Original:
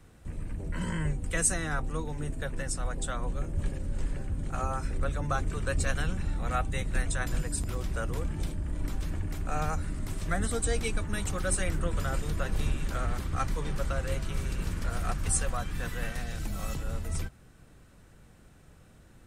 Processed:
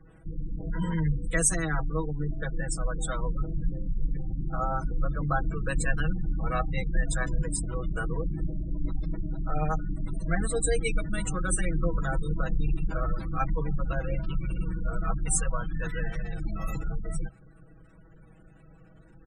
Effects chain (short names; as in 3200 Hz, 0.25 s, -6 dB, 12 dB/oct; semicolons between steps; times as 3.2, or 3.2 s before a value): comb 6.2 ms, depth 92%; spectral gate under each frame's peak -25 dB strong